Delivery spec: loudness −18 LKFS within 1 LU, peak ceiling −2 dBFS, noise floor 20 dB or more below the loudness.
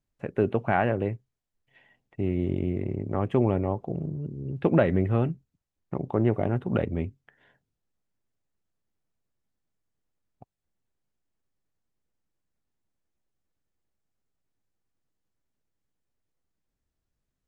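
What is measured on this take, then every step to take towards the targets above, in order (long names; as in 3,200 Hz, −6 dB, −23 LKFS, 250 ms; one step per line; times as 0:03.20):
integrated loudness −27.5 LKFS; sample peak −8.0 dBFS; target loudness −18.0 LKFS
→ level +9.5 dB
brickwall limiter −2 dBFS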